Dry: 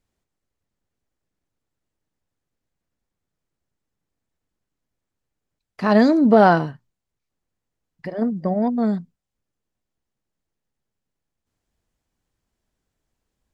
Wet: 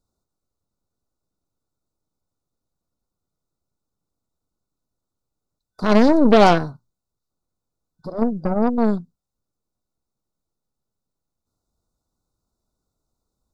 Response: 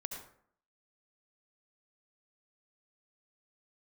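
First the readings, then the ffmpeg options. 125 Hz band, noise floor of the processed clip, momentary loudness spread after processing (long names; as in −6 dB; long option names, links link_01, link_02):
0.0 dB, −83 dBFS, 15 LU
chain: -af "afftfilt=real='re*(1-between(b*sr/4096,1500,3500))':imag='im*(1-between(b*sr/4096,1500,3500))':win_size=4096:overlap=0.75,aeval=exprs='0.794*(cos(1*acos(clip(val(0)/0.794,-1,1)))-cos(1*PI/2))+0.112*(cos(8*acos(clip(val(0)/0.794,-1,1)))-cos(8*PI/2))':channel_layout=same"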